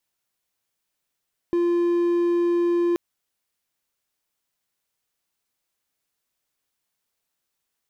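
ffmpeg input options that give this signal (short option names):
-f lavfi -i "aevalsrc='0.158*(1-4*abs(mod(346*t+0.25,1)-0.5))':d=1.43:s=44100"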